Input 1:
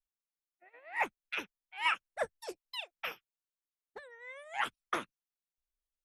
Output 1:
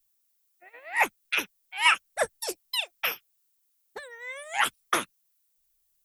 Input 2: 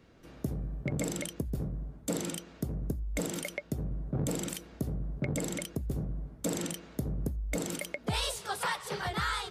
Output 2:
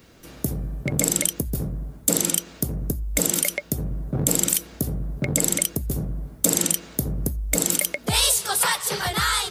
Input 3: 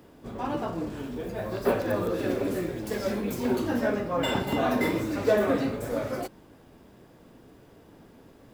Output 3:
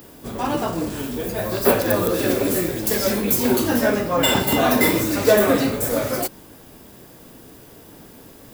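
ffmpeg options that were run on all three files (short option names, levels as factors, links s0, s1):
-af "aemphasis=mode=production:type=75kf,volume=2.24"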